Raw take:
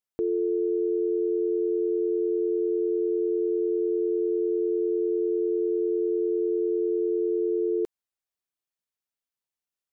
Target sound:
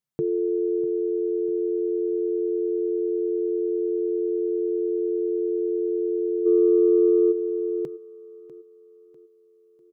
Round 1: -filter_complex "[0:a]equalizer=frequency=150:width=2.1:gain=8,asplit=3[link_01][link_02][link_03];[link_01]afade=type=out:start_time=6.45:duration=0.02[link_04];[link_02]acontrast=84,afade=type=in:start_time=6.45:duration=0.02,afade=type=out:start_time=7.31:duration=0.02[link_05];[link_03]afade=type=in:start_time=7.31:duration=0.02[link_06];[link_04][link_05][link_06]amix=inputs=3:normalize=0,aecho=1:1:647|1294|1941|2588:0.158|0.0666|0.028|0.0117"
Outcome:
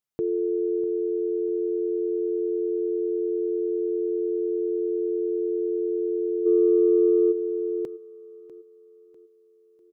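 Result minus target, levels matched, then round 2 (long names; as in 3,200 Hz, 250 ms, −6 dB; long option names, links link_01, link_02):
125 Hz band −7.0 dB
-filter_complex "[0:a]equalizer=frequency=150:width=2.1:gain=19,asplit=3[link_01][link_02][link_03];[link_01]afade=type=out:start_time=6.45:duration=0.02[link_04];[link_02]acontrast=84,afade=type=in:start_time=6.45:duration=0.02,afade=type=out:start_time=7.31:duration=0.02[link_05];[link_03]afade=type=in:start_time=7.31:duration=0.02[link_06];[link_04][link_05][link_06]amix=inputs=3:normalize=0,aecho=1:1:647|1294|1941|2588:0.158|0.0666|0.028|0.0117"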